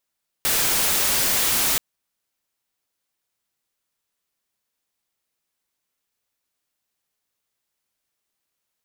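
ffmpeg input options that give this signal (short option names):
-f lavfi -i "anoisesrc=c=white:a=0.163:d=1.33:r=44100:seed=1"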